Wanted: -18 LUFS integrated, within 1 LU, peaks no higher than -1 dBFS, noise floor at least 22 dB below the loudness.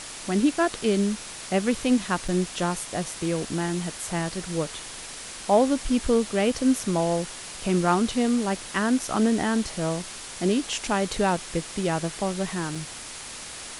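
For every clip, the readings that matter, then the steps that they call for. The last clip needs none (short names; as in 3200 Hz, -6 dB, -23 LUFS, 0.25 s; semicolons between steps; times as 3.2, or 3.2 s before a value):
dropouts 2; longest dropout 4.2 ms; noise floor -39 dBFS; noise floor target -48 dBFS; loudness -25.5 LUFS; peak -9.5 dBFS; loudness target -18.0 LUFS
-> interpolate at 2.28/12.75, 4.2 ms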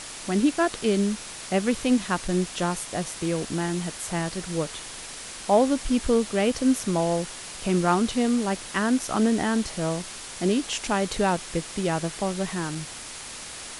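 dropouts 0; noise floor -39 dBFS; noise floor target -48 dBFS
-> noise print and reduce 9 dB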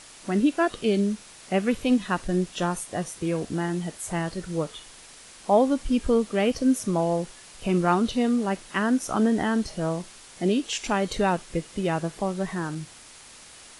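noise floor -48 dBFS; loudness -26.0 LUFS; peak -9.5 dBFS; loudness target -18.0 LUFS
-> gain +8 dB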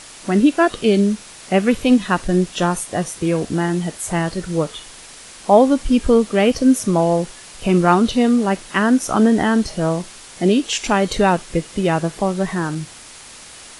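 loudness -18.0 LUFS; peak -1.5 dBFS; noise floor -40 dBFS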